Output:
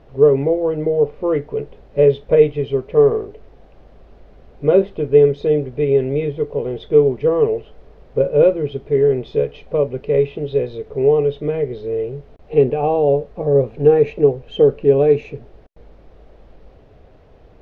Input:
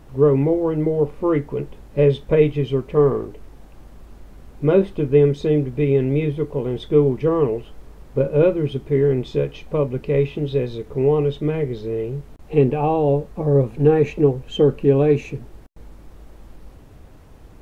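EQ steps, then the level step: air absorption 280 m; band shelf 540 Hz +8 dB 1.1 oct; high shelf 2600 Hz +11.5 dB; -3.5 dB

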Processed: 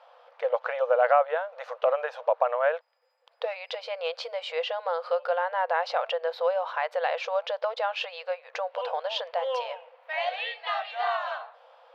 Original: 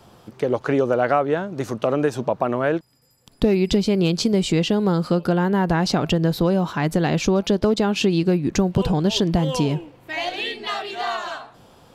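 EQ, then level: brick-wall FIR high-pass 470 Hz; air absorption 340 m; 0.0 dB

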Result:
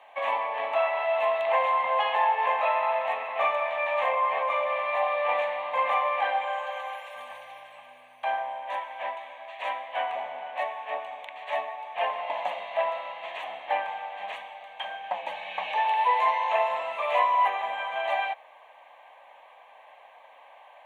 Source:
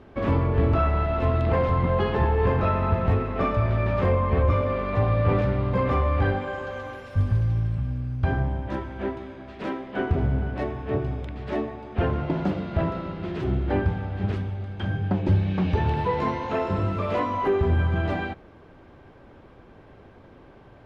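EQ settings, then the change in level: HPF 650 Hz 24 dB/oct; fixed phaser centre 1400 Hz, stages 6; +7.5 dB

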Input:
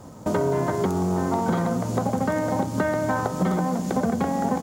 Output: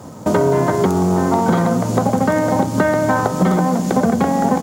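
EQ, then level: HPF 84 Hz; +8.0 dB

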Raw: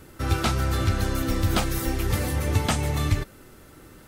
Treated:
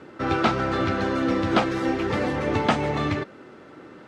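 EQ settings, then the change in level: HPF 230 Hz 12 dB/oct; LPF 2100 Hz 6 dB/oct; air absorption 110 m; +7.5 dB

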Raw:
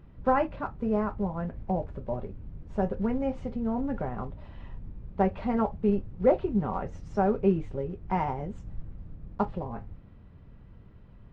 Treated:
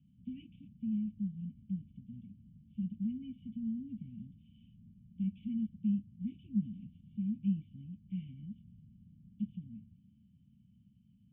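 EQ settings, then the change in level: vocal tract filter i; HPF 130 Hz 12 dB/oct; Chebyshev band-stop 210–2800 Hz, order 4; +3.5 dB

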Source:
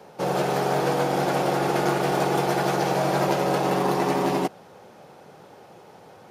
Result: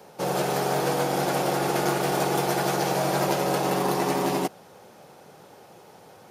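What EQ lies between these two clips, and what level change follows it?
high shelf 5600 Hz +9.5 dB; -2.0 dB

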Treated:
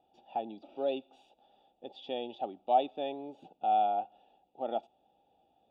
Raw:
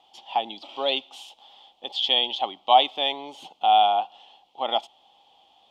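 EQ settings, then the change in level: running mean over 42 samples; 0.0 dB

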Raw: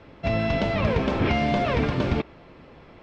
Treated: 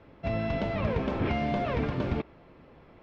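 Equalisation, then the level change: high shelf 3200 Hz -8.5 dB; -5.5 dB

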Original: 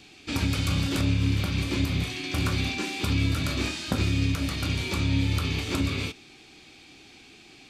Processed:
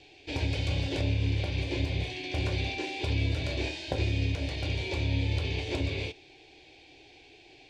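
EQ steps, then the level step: tape spacing loss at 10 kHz 26 dB; low shelf 410 Hz -7 dB; fixed phaser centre 520 Hz, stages 4; +6.5 dB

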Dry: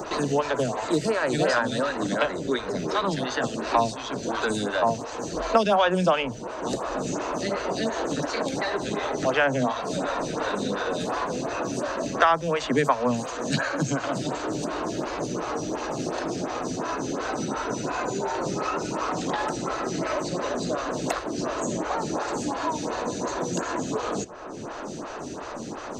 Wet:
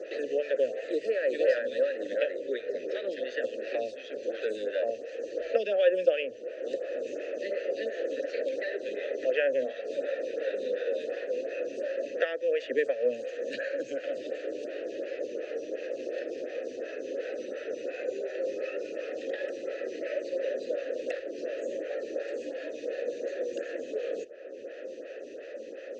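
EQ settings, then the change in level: vowel filter e; LPF 8600 Hz; fixed phaser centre 380 Hz, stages 4; +6.5 dB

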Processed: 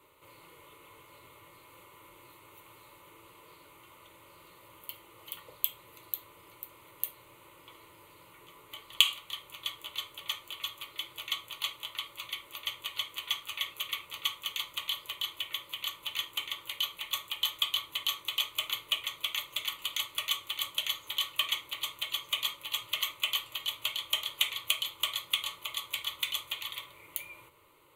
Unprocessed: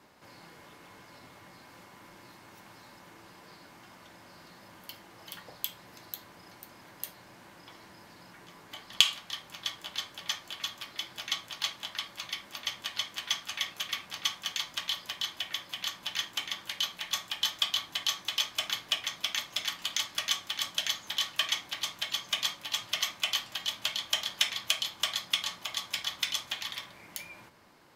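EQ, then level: high shelf 8300 Hz +9 dB; fixed phaser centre 1100 Hz, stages 8; 0.0 dB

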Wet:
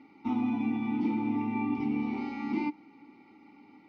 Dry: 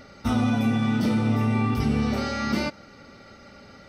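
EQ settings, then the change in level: vowel filter u; HPF 120 Hz 6 dB/oct; air absorption 71 m; +6.0 dB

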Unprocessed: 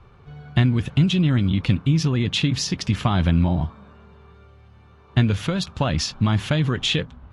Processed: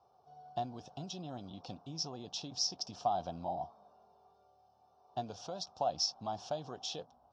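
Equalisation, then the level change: double band-pass 2000 Hz, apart 2.9 oct; air absorption 71 m; +1.0 dB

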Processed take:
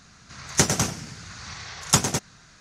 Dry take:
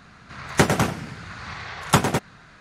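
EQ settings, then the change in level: low shelf 210 Hz +5.5 dB; high shelf 3700 Hz +7 dB; bell 6100 Hz +13 dB 0.93 oct; -7.5 dB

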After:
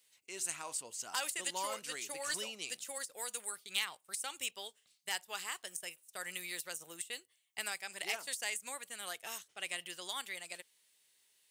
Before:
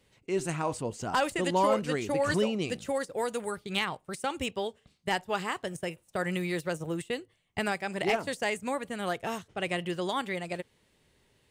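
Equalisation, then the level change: differentiator; +4.0 dB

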